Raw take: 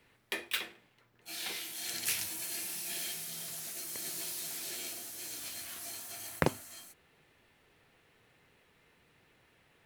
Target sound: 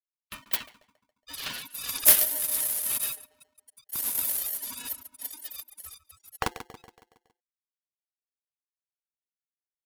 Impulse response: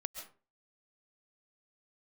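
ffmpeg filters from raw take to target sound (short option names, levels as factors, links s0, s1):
-filter_complex "[0:a]asettb=1/sr,asplit=3[s0][s1][s2];[s0]atrim=end=2.984[s3];[s1]atrim=start=2.98:end=3.93,asetpts=PTS-STARTPTS,afade=t=in:d=0.004:c=qsin,afade=t=out:st=0.946:d=0.004:c=qsin,agate=range=0.0224:threshold=0.0141:ratio=3:detection=peak[s4];[s2]atrim=start=3.926[s5];[s3][s4]acrossfade=d=0.004:c1=hsin:c2=qsin[s6];[s6][s5]acrossfade=d=0.004:c1=qsin:c2=hsin,afftfilt=real='re*gte(hypot(re,im),0.0158)':imag='im*gte(hypot(re,im),0.0158)':win_size=1024:overlap=0.75,dynaudnorm=f=200:g=7:m=5.62,aexciter=amount=9.4:drive=4.6:freq=11000,aeval=exprs='2.37*(cos(1*acos(clip(val(0)/2.37,-1,1)))-cos(1*PI/2))+0.0266*(cos(2*acos(clip(val(0)/2.37,-1,1)))-cos(2*PI/2))+0.015*(cos(3*acos(clip(val(0)/2.37,-1,1)))-cos(3*PI/2))+0.015*(cos(4*acos(clip(val(0)/2.37,-1,1)))-cos(4*PI/2))+0.0944*(cos(6*acos(clip(val(0)/2.37,-1,1)))-cos(6*PI/2))':c=same,asplit=2[s7][s8];[s8]adelay=139,lowpass=f=960:p=1,volume=0.282,asplit=2[s9][s10];[s10]adelay=139,lowpass=f=960:p=1,volume=0.55,asplit=2[s11][s12];[s12]adelay=139,lowpass=f=960:p=1,volume=0.55,asplit=2[s13][s14];[s14]adelay=139,lowpass=f=960:p=1,volume=0.55,asplit=2[s15][s16];[s16]adelay=139,lowpass=f=960:p=1,volume=0.55,asplit=2[s17][s18];[s18]adelay=139,lowpass=f=960:p=1,volume=0.55[s19];[s9][s11][s13][s15][s17][s19]amix=inputs=6:normalize=0[s20];[s7][s20]amix=inputs=2:normalize=0,aeval=exprs='val(0)*sgn(sin(2*PI*610*n/s))':c=same,volume=0.398"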